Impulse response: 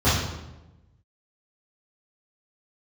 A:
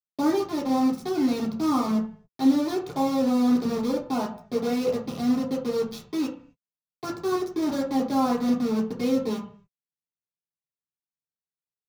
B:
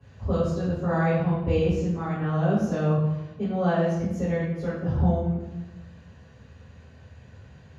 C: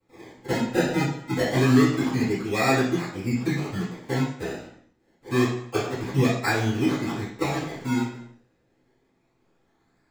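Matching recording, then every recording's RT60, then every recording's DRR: B; 0.50, 1.0, 0.65 seconds; −5.5, −14.0, −17.0 decibels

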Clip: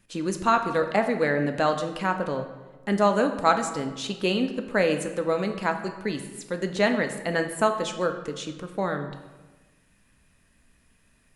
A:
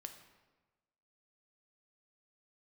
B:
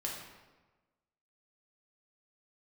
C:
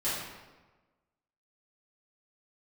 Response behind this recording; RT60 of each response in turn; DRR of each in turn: A; 1.3, 1.3, 1.3 seconds; 6.0, −3.0, −12.5 decibels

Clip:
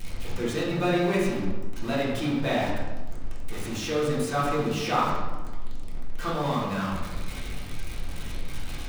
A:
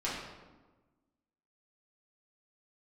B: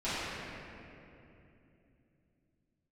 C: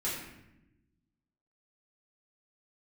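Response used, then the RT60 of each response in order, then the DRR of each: A; 1.3 s, 2.9 s, non-exponential decay; −8.0, −16.0, −8.5 decibels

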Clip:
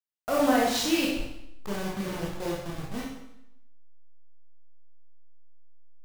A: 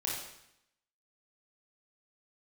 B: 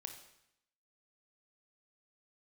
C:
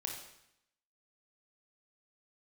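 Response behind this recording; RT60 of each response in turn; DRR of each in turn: A; 0.75, 0.75, 0.75 seconds; −4.5, 5.0, 0.5 decibels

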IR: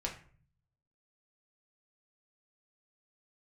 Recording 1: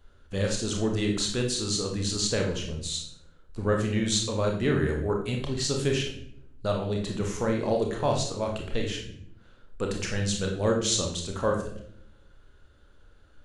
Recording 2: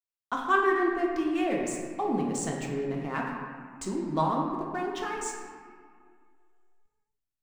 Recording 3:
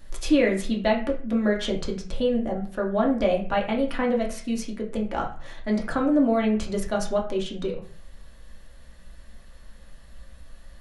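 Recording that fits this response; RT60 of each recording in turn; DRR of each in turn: 3; 0.70, 2.1, 0.45 seconds; 0.5, −2.0, −1.5 decibels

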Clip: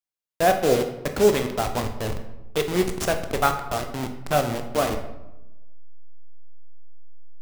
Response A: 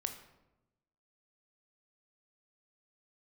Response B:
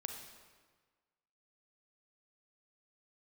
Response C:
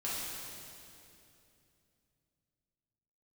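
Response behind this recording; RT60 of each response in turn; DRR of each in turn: A; 1.0, 1.5, 2.8 seconds; 5.5, 4.0, −8.5 decibels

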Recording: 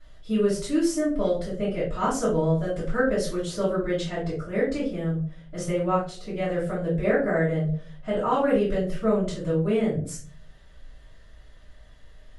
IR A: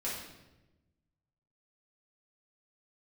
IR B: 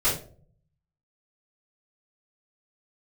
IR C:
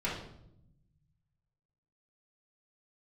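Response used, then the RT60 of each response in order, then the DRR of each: B; 1.0, 0.50, 0.75 seconds; −8.0, −13.0, −8.0 decibels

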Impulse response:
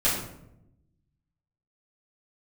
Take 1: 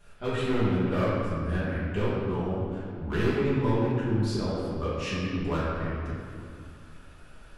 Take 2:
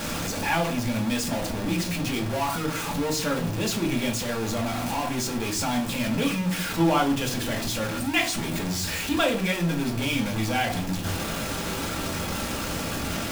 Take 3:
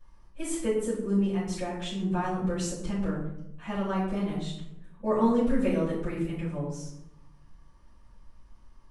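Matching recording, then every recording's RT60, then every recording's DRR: 3; 2.4, 0.40, 0.80 seconds; −10.5, 0.0, −11.0 decibels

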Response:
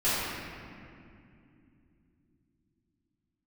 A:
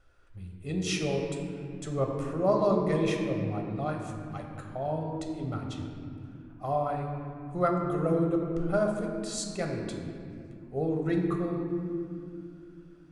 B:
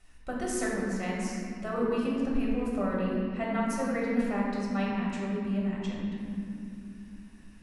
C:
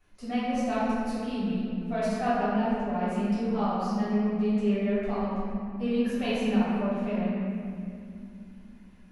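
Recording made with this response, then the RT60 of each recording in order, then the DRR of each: C; 2.7, 2.6, 2.6 seconds; 1.5, −5.0, −15.0 decibels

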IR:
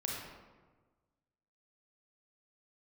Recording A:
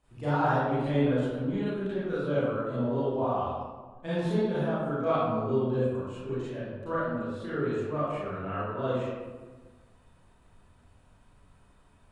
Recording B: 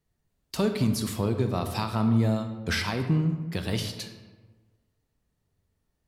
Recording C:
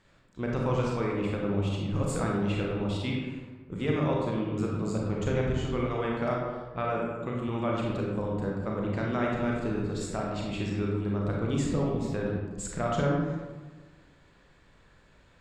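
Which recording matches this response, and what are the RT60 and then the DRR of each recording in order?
C; 1.4, 1.4, 1.4 seconds; −12.0, 7.0, −2.5 decibels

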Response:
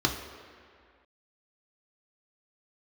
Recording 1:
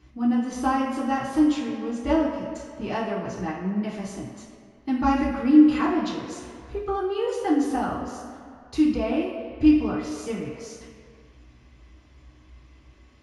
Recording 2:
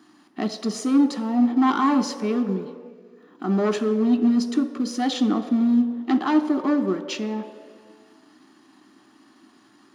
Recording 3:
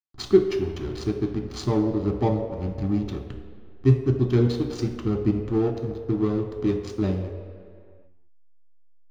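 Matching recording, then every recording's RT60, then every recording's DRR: 3; 2.1, 2.1, 2.1 seconds; −8.0, 7.0, 1.5 decibels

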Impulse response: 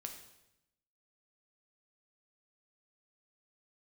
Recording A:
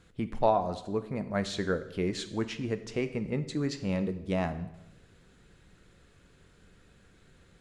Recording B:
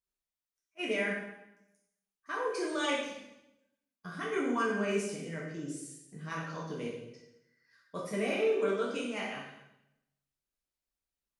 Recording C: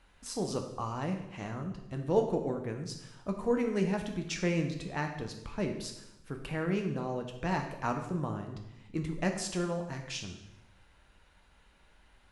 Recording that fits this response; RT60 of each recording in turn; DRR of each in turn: C; 0.85, 0.85, 0.85 seconds; 10.0, −5.0, 3.5 decibels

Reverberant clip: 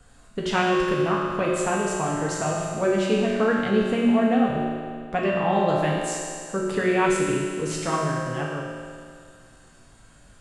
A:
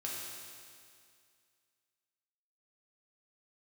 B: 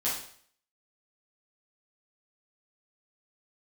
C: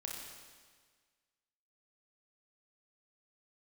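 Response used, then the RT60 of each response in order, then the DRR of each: A; 2.2, 0.55, 1.6 seconds; −5.0, −9.0, −2.0 decibels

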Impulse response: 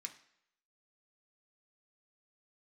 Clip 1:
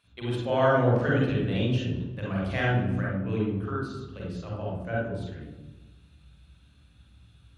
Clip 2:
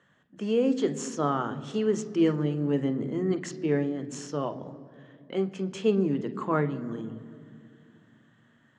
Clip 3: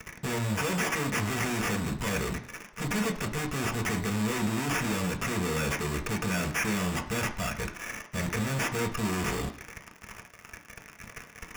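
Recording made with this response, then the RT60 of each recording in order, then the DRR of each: 3; 1.2 s, 2.4 s, non-exponential decay; −4.5, 9.5, 3.0 decibels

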